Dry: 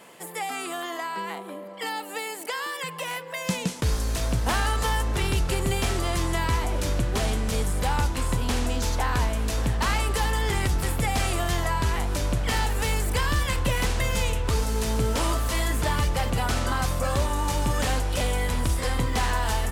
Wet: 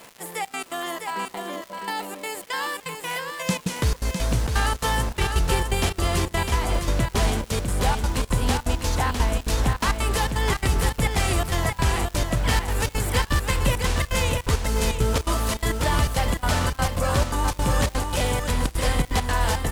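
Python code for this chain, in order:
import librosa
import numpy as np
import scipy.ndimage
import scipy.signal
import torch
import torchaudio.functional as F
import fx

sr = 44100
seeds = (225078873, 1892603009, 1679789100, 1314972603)

y = fx.step_gate(x, sr, bpm=168, pattern='x.xxx.x.xxx.x', floor_db=-24.0, edge_ms=4.5)
y = fx.dmg_crackle(y, sr, seeds[0], per_s=270.0, level_db=-35.0)
y = y + 10.0 ** (-5.5 / 20.0) * np.pad(y, (int(655 * sr / 1000.0), 0))[:len(y)]
y = y * 10.0 ** (2.5 / 20.0)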